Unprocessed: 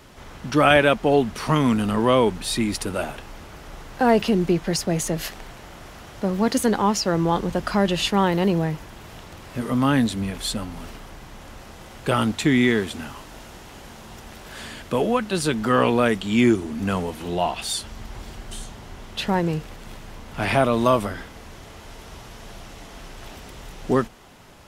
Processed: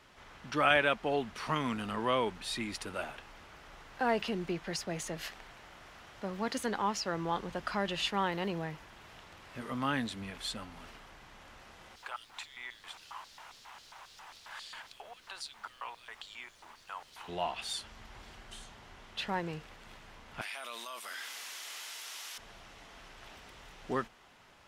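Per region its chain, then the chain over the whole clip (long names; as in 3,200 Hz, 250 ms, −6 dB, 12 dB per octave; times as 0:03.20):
0:11.95–0:17.27: downward compressor 3 to 1, threshold −31 dBFS + auto-filter high-pass square 3.7 Hz 920–4,300 Hz + background noise pink −51 dBFS
0:20.41–0:22.38: linear-phase brick-wall high-pass 200 Hz + first difference + envelope flattener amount 100%
whole clip: low-pass filter 1,600 Hz 6 dB per octave; tilt shelving filter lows −8.5 dB, about 900 Hz; level −9 dB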